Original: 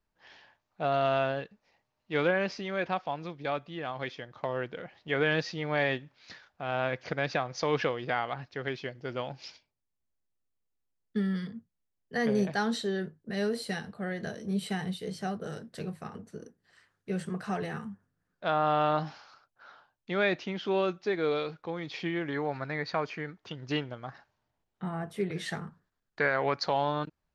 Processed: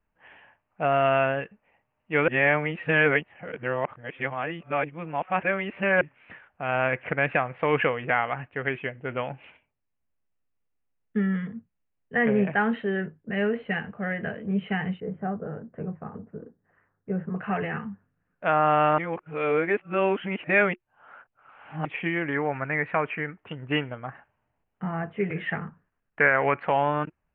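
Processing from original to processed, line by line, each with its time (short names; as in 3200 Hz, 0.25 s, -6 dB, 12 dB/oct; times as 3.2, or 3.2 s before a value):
2.28–6.01 reverse
15–17.36 Bessel low-pass 1100 Hz, order 4
18.98–21.85 reverse
whole clip: steep low-pass 2900 Hz 72 dB/oct; notch 360 Hz, Q 12; dynamic EQ 2100 Hz, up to +5 dB, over -47 dBFS, Q 1.1; gain +4.5 dB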